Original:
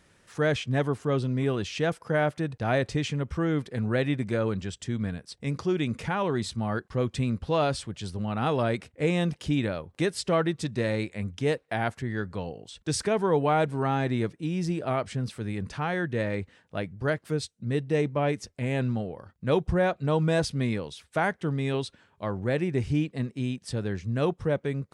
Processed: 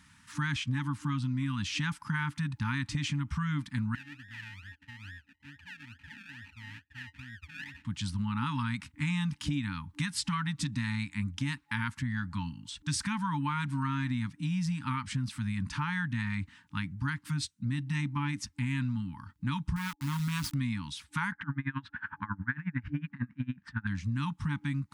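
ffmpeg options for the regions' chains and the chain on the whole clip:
-filter_complex "[0:a]asettb=1/sr,asplit=3[a][b][c];[a]atrim=end=3.954[d];[b]atrim=start=3.95:end=7.85,asetpts=PTS-STARTPTS,afade=t=in:d=0.004:c=qsin,afade=t=out:st=3.896:d=0.004:c=qsin,lowshelf=f=120:t=q:w=3:g=14,acrusher=samples=35:mix=1:aa=0.000001:lfo=1:lforange=21:lforate=2.3,asplit=3[e][f][g];[e]bandpass=f=530:t=q:w=8,volume=0dB[h];[f]bandpass=f=1.84k:t=q:w=8,volume=-6dB[i];[g]bandpass=f=2.48k:t=q:w=8,volume=-9dB[j];[h][i][j]amix=inputs=3:normalize=0[k];[c]atrim=start=7.846[l];[d][k]acrossfade=d=0.004:c1=hsin:c2=qsin[m];[m][l]acrossfade=d=0.004:c1=qsin:c2=hsin,asettb=1/sr,asplit=3[n][o][p];[n]atrim=end=19.764[q];[o]atrim=start=19.76:end=20.54,asetpts=PTS-STARTPTS,afade=t=in:d=0.004:c=qsin,afade=t=out:st=0.776:d=0.004:c=qsin,equalizer=f=680:t=o:w=1.2:g=-7.5,acrusher=bits=4:dc=4:mix=0:aa=0.000001[r];[p]atrim=start=20.536[s];[q][r]acrossfade=d=0.004:c1=hsin:c2=qsin[t];[t][s]acrossfade=d=0.004:c1=qsin:c2=hsin,asettb=1/sr,asplit=3[u][v][w];[u]atrim=end=21.324[x];[v]atrim=start=21.32:end=23.87,asetpts=PTS-STARTPTS,afade=t=in:d=0.004:c=qsin,afade=t=out:st=2.546:d=0.004:c=qsin,acompressor=mode=upward:threshold=-29dB:ratio=2.5:attack=3.2:release=140:knee=2.83:detection=peak,lowpass=f=1.6k:t=q:w=5.6,aeval=exprs='val(0)*pow(10,-27*(0.5-0.5*cos(2*PI*11*n/s))/20)':c=same[y];[w]atrim=start=23.866[z];[x][y]acrossfade=d=0.004:c1=hsin:c2=qsin[aa];[aa][z]acrossfade=d=0.004:c1=qsin:c2=hsin,afftfilt=real='re*(1-between(b*sr/4096,300,850))':imag='im*(1-between(b*sr/4096,300,850))':win_size=4096:overlap=0.75,highpass=45,acompressor=threshold=-31dB:ratio=6,volume=2.5dB"

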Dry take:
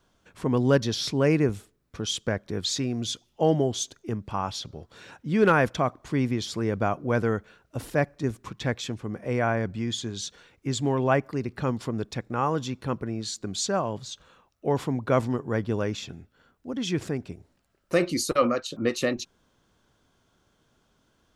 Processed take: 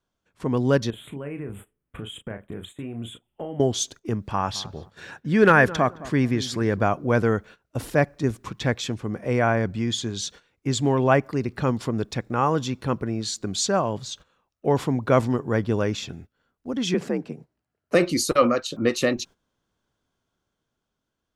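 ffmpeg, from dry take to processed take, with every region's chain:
-filter_complex "[0:a]asettb=1/sr,asplit=3[a][b][c];[a]atrim=end=0.904[d];[b]atrim=start=0.9:end=3.6,asetpts=PTS-STARTPTS,afade=t=in:d=0.004:c=qsin,afade=t=out:st=2.696:d=0.004:c=qsin,acompressor=threshold=-35dB:ratio=5:attack=3.2:release=140:knee=1:detection=peak,asuperstop=centerf=5200:order=8:qfactor=1.1,asplit=2[e][f];[f]adelay=35,volume=-8dB[g];[e][g]amix=inputs=2:normalize=0,atrim=end_sample=119070[h];[c]atrim=start=3.596[i];[d][h]acrossfade=d=0.004:c1=hsin:c2=qsin[j];[j][i]acrossfade=d=0.004:c1=qsin:c2=hsin,asettb=1/sr,asplit=3[k][l][m];[k]atrim=end=4.284[n];[l]atrim=start=4.28:end=6.84,asetpts=PTS-STARTPTS,afade=t=in:d=0.004:c=qsin,afade=t=out:st=2.556:d=0.004:c=qsin,equalizer=f=1.7k:t=o:w=0.24:g=8,asplit=2[o][p];[p]adelay=215,lowpass=f=960:p=1,volume=-15.5dB,asplit=2[q][r];[r]adelay=215,lowpass=f=960:p=1,volume=0.28,asplit=2[s][t];[t]adelay=215,lowpass=f=960:p=1,volume=0.28[u];[o][q][s][u]amix=inputs=4:normalize=0,atrim=end_sample=112896[v];[m]atrim=start=6.836[w];[n][v]acrossfade=d=0.004:c1=hsin:c2=qsin[x];[x][w]acrossfade=d=0.004:c1=qsin:c2=hsin,asettb=1/sr,asplit=3[y][z][aa];[y]atrim=end=16.944[ab];[z]atrim=start=16.94:end=17.95,asetpts=PTS-STARTPTS,afade=t=in:d=0.004:c=qsin,afade=t=out:st=1.006:d=0.004:c=qsin,highshelf=f=3.5k:g=-7.5,bandreject=f=3.5k:w=17,afreqshift=57[ac];[aa]atrim=start=17.946[ad];[ab][ac]acrossfade=d=0.004:c1=hsin:c2=qsin[ae];[ae][ad]acrossfade=d=0.004:c1=qsin:c2=hsin,agate=range=-14dB:threshold=-46dB:ratio=16:detection=peak,dynaudnorm=f=170:g=13:m=4dB"

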